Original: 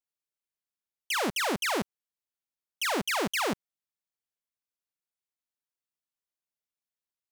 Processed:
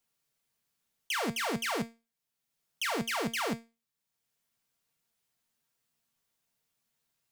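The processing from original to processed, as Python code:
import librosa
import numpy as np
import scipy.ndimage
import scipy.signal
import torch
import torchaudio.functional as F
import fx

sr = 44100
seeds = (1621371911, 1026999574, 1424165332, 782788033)

p1 = fx.peak_eq(x, sr, hz=140.0, db=10.0, octaves=0.76)
p2 = fx.level_steps(p1, sr, step_db=24)
p3 = p1 + (p2 * 10.0 ** (2.0 / 20.0))
p4 = fx.comb_fb(p3, sr, f0_hz=230.0, decay_s=0.26, harmonics='all', damping=0.0, mix_pct=70)
p5 = fx.band_squash(p4, sr, depth_pct=40)
y = p5 * 10.0 ** (2.5 / 20.0)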